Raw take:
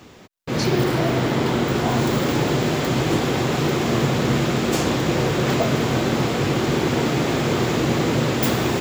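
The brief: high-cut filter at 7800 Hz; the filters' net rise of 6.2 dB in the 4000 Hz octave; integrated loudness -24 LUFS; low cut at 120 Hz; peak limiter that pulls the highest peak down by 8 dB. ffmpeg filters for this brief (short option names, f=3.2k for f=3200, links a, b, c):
-af "highpass=120,lowpass=7.8k,equalizer=f=4k:t=o:g=8,volume=-0.5dB,alimiter=limit=-15.5dB:level=0:latency=1"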